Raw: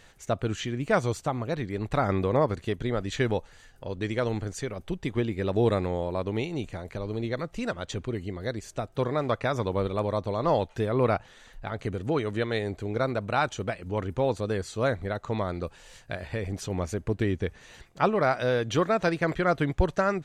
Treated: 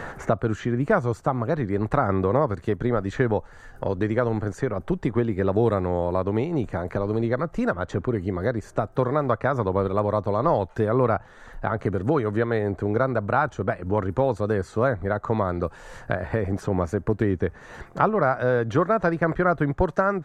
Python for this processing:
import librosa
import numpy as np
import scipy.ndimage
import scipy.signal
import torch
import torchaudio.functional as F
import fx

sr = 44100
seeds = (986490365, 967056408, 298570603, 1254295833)

y = fx.high_shelf_res(x, sr, hz=2000.0, db=-10.5, q=1.5)
y = fx.band_squash(y, sr, depth_pct=70)
y = y * librosa.db_to_amplitude(3.5)